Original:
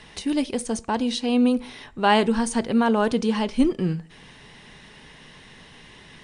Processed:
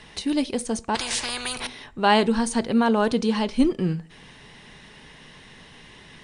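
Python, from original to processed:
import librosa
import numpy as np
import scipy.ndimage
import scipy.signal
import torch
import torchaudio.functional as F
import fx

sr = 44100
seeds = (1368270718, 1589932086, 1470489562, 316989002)

y = fx.dynamic_eq(x, sr, hz=4100.0, q=5.5, threshold_db=-49.0, ratio=4.0, max_db=6)
y = fx.spectral_comp(y, sr, ratio=10.0, at=(0.95, 1.67))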